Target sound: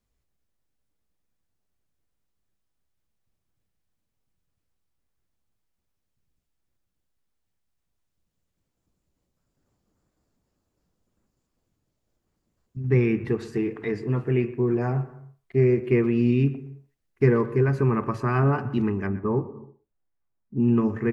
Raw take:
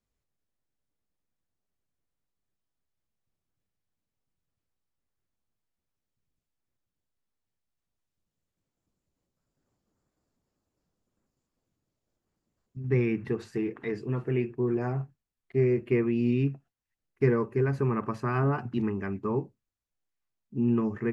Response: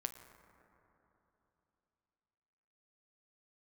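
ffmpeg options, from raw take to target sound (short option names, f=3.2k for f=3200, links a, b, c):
-filter_complex "[0:a]asettb=1/sr,asplit=3[a][b][c];[a]atrim=end=19.074[d];[b]atrim=start=19.07:end=20.6,asetpts=PTS-STARTPTS,afade=t=in:d=0.004:c=qsin,afade=t=out:st=1.526:d=0.004:c=qsin,lowpass=1.4k[e];[c]atrim=start=20.596[f];[d][e]acrossfade=d=0.004:c1=hsin:c2=qsin[g];[g][f]acrossfade=d=0.004:c1=qsin:c2=hsin,asplit=2[h][i];[i]adelay=120,highpass=300,lowpass=3.4k,asoftclip=type=hard:threshold=-20.5dB,volume=-17dB[j];[h][j]amix=inputs=2:normalize=0,asplit=2[k][l];[1:a]atrim=start_sample=2205,afade=t=out:st=0.38:d=0.01,atrim=end_sample=17199,lowshelf=f=130:g=9[m];[l][m]afir=irnorm=-1:irlink=0,volume=-2.5dB[n];[k][n]amix=inputs=2:normalize=0"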